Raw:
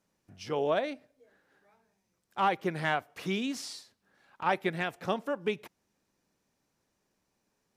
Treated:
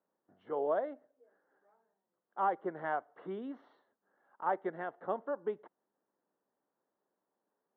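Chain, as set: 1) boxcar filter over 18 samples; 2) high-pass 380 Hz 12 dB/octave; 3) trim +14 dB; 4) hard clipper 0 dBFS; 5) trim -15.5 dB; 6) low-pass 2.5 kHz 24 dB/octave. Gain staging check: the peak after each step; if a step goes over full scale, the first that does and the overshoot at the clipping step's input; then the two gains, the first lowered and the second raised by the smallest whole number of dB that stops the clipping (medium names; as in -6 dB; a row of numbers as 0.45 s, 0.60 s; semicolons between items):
-17.0 dBFS, -18.5 dBFS, -4.5 dBFS, -4.5 dBFS, -20.0 dBFS, -20.0 dBFS; nothing clips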